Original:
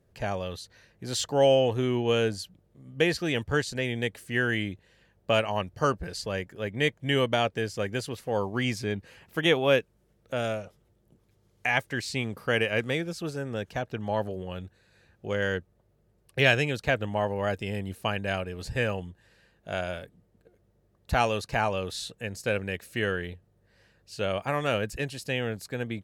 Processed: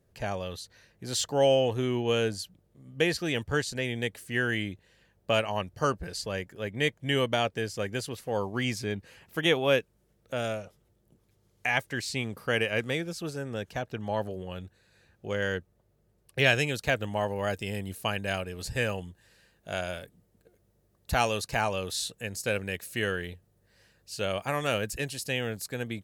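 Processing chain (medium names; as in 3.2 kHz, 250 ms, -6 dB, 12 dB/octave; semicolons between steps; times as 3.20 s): treble shelf 5 kHz +5 dB, from 16.55 s +11.5 dB; trim -2 dB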